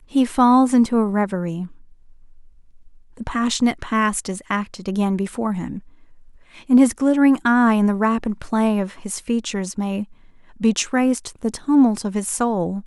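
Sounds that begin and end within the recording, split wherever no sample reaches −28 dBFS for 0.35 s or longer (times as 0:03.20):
0:03.20–0:05.78
0:06.70–0:10.04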